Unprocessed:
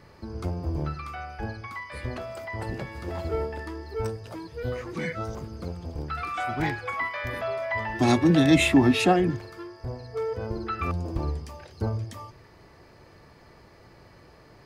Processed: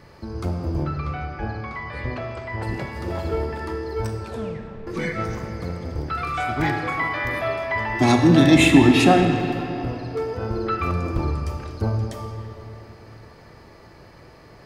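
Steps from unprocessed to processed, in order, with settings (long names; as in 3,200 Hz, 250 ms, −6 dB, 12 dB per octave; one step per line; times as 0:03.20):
0:00.84–0:02.63: high-frequency loss of the air 120 metres
0:04.19: tape stop 0.68 s
convolution reverb RT60 3.4 s, pre-delay 4 ms, DRR 4 dB
level +4 dB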